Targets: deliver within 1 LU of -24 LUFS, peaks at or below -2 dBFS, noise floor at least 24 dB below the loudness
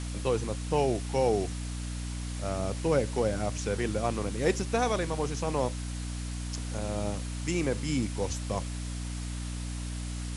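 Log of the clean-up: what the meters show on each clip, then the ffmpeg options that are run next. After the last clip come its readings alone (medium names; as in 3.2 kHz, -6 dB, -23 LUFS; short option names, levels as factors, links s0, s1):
hum 60 Hz; highest harmonic 300 Hz; hum level -33 dBFS; noise floor -36 dBFS; noise floor target -56 dBFS; loudness -31.5 LUFS; peak level -13.5 dBFS; loudness target -24.0 LUFS
-> -af "bandreject=f=60:t=h:w=6,bandreject=f=120:t=h:w=6,bandreject=f=180:t=h:w=6,bandreject=f=240:t=h:w=6,bandreject=f=300:t=h:w=6"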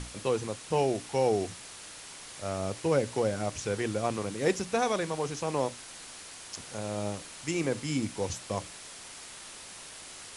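hum not found; noise floor -46 dBFS; noise floor target -56 dBFS
-> -af "afftdn=nr=10:nf=-46"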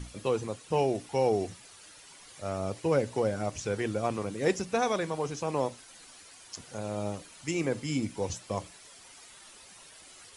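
noise floor -53 dBFS; noise floor target -56 dBFS
-> -af "afftdn=nr=6:nf=-53"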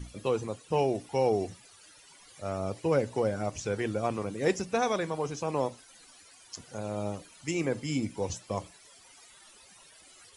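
noise floor -56 dBFS; loudness -31.5 LUFS; peak level -14.0 dBFS; loudness target -24.0 LUFS
-> -af "volume=2.37"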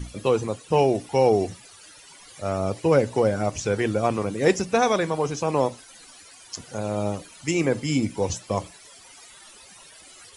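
loudness -24.0 LUFS; peak level -6.5 dBFS; noise floor -49 dBFS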